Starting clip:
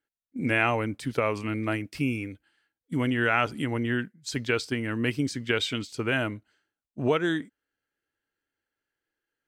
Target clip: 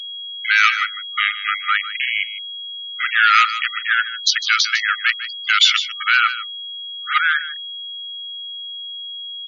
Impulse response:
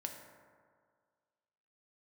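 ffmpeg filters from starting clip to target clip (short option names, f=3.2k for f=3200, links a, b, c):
-filter_complex "[0:a]afwtdn=0.0112,aemphasis=mode=production:type=50fm,asetrate=41625,aresample=44100,atempo=1.05946,acrossover=split=4200[a][b];[a]asoftclip=type=hard:threshold=-24dB[c];[c][b]amix=inputs=2:normalize=0,afftfilt=real='re*gte(hypot(re,im),0.0158)':imag='im*gte(hypot(re,im),0.0158)':win_size=1024:overlap=0.75,asplit=2[d][e];[e]aecho=0:1:152:0.2[f];[d][f]amix=inputs=2:normalize=0,afftfilt=real='re*between(b*sr/4096,1200,7100)':imag='im*between(b*sr/4096,1200,7100)':win_size=4096:overlap=0.75,aeval=exprs='val(0)+0.00447*sin(2*PI*3300*n/s)':c=same,alimiter=level_in=20.5dB:limit=-1dB:release=50:level=0:latency=1,volume=-1.5dB" -ar 24000 -c:a libmp3lame -b:a 40k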